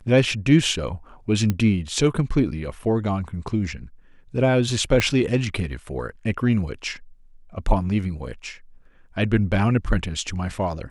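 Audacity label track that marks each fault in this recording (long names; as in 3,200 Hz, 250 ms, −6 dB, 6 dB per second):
1.500000	1.500000	click −10 dBFS
5.000000	5.000000	click −6 dBFS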